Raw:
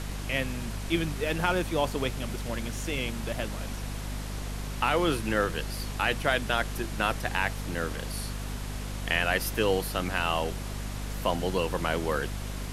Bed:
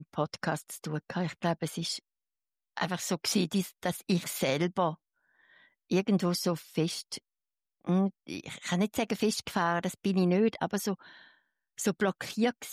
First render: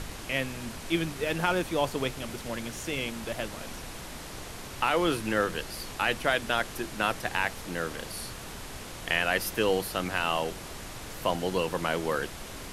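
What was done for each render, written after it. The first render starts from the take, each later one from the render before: de-hum 50 Hz, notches 5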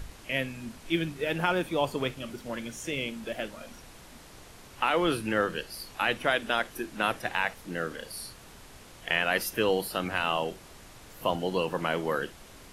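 noise print and reduce 9 dB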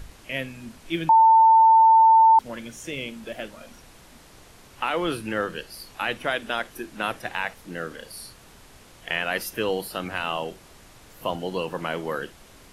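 1.09–2.39 bleep 895 Hz -11 dBFS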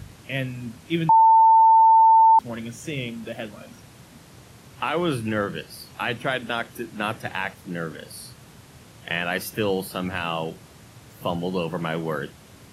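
HPF 81 Hz; bell 120 Hz +11 dB 1.7 oct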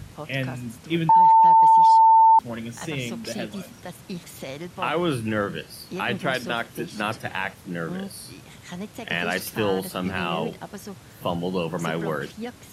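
add bed -6.5 dB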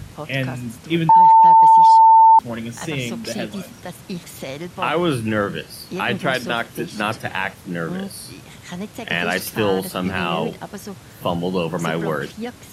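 gain +4.5 dB

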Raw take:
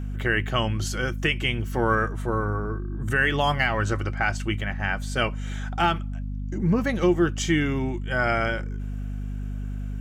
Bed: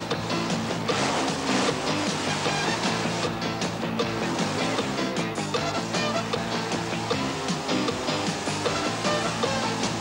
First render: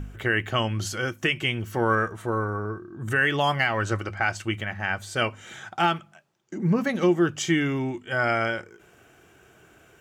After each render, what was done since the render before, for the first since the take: de-hum 50 Hz, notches 5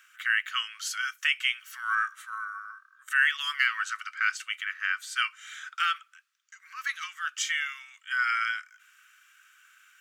steep high-pass 1200 Hz 72 dB/oct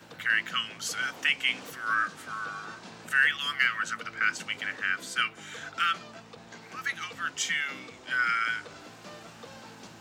add bed -21 dB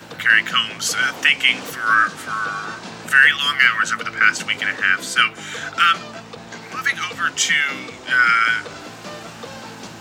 gain +12 dB; limiter -1 dBFS, peak gain reduction 2 dB

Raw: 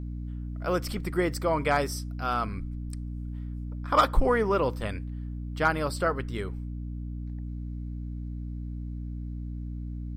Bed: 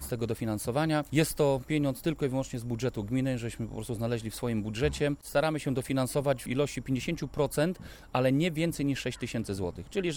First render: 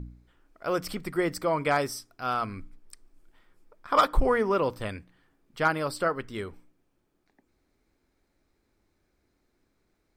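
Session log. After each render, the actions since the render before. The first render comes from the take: de-hum 60 Hz, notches 5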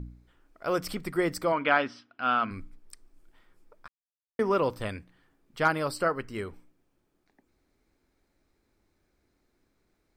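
1.52–2.51 speaker cabinet 150–3700 Hz, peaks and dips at 150 Hz -8 dB, 240 Hz +7 dB, 400 Hz -7 dB, 1500 Hz +7 dB, 2900 Hz +9 dB; 3.88–4.39 mute; 5.95–6.46 Butterworth band-stop 3500 Hz, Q 4.9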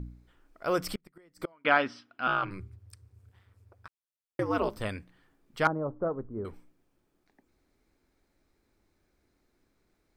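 0.8–1.65 flipped gate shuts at -22 dBFS, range -33 dB; 2.27–4.77 ring modulator 95 Hz; 5.67–6.45 Bessel low-pass 660 Hz, order 6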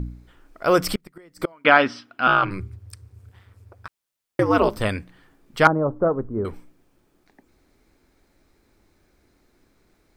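gain +10.5 dB; limiter -1 dBFS, peak gain reduction 2.5 dB

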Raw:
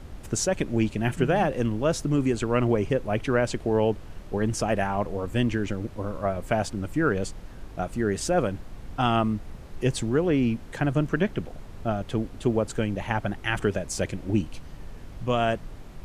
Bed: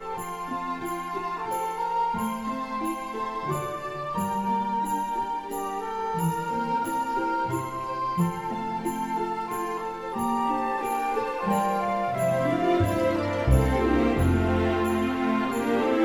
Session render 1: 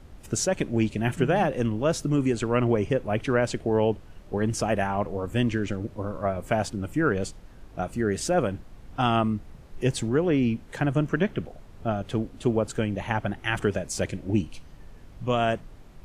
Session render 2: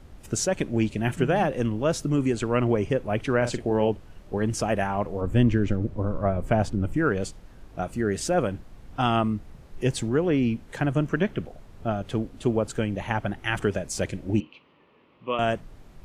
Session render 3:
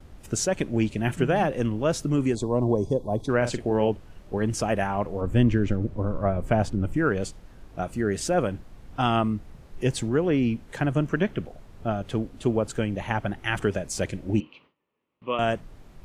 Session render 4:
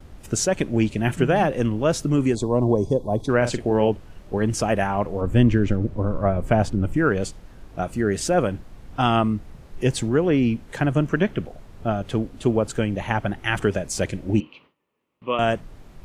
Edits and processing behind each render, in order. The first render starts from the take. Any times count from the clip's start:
noise print and reduce 6 dB
3.37–3.89 doubler 42 ms -9.5 dB; 5.21–6.97 tilt -2 dB/oct; 14.4–15.39 speaker cabinet 340–3100 Hz, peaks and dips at 710 Hz -9 dB, 1100 Hz +4 dB, 1600 Hz -10 dB, 2700 Hz +4 dB
2.35–3.29 spectral gain 1100–3300 Hz -25 dB; gate with hold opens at -46 dBFS
gain +3.5 dB

